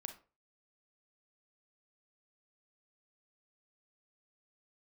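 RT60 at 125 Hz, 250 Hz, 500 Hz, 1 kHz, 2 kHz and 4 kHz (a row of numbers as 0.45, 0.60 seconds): 0.40, 0.35, 0.40, 0.35, 0.30, 0.25 seconds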